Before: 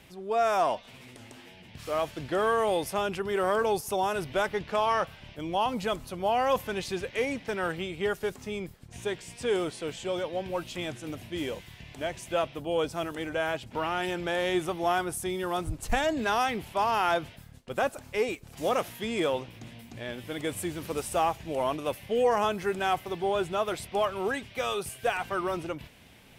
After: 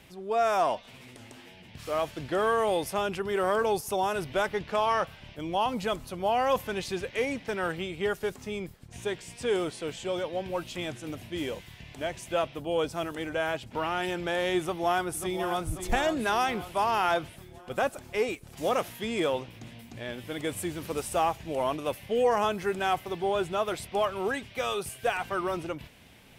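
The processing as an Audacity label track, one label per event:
14.600000	15.670000	echo throw 0.54 s, feedback 60%, level -9 dB

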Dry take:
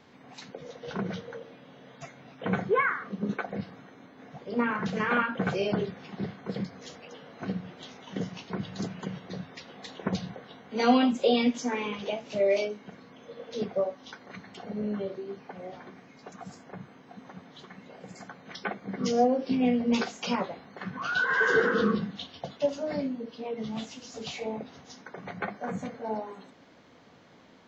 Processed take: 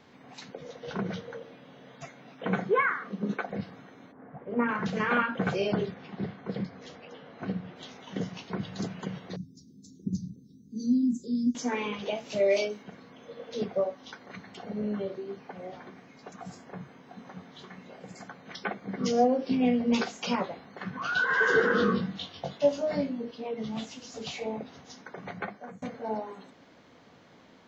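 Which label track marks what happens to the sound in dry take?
2.100000	3.500000	HPF 140 Hz 24 dB/oct
4.110000	4.670000	LPF 1400 Hz -> 2400 Hz 24 dB/oct
5.940000	7.760000	air absorption 120 m
9.360000	11.550000	inverse Chebyshev band-stop 620–2900 Hz, stop band 50 dB
12.150000	12.830000	high shelf 4700 Hz +8.5 dB
16.420000	17.970000	doubler 22 ms -7 dB
21.680000	23.310000	doubler 21 ms -3.5 dB
25.310000	25.820000	fade out, to -22 dB

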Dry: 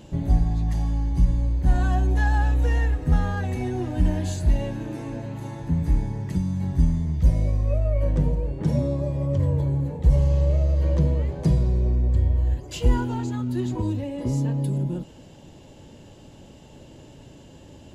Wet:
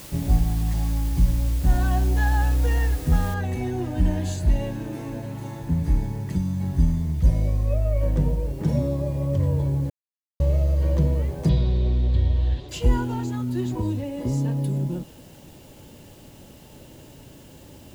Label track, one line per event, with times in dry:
3.340000	3.340000	noise floor step -43 dB -56 dB
9.900000	10.400000	mute
11.490000	12.690000	synth low-pass 3700 Hz, resonance Q 5.5

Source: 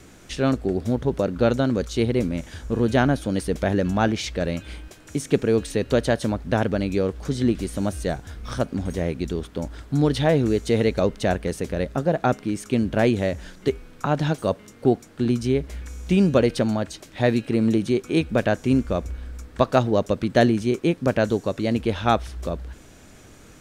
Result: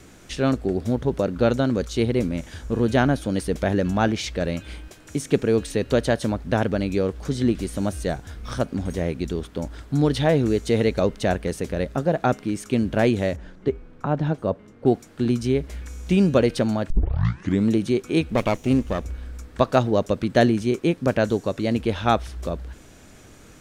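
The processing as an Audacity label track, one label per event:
13.360000	14.860000	LPF 1000 Hz 6 dB/oct
16.900000	16.900000	tape start 0.77 s
18.300000	19.050000	minimum comb delay 0.32 ms

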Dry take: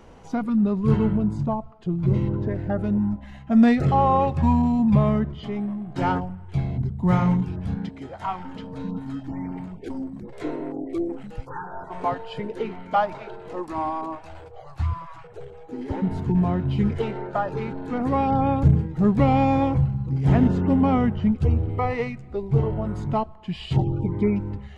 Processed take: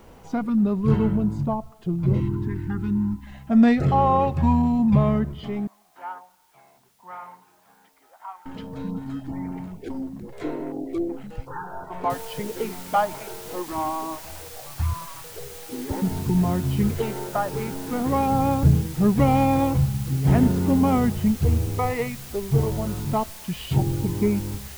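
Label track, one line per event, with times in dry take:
2.200000	3.270000	Chebyshev band-stop 370–900 Hz, order 3
5.670000	8.460000	ladder band-pass 1200 Hz, resonance 30%
12.100000	12.100000	noise floor step -65 dB -42 dB

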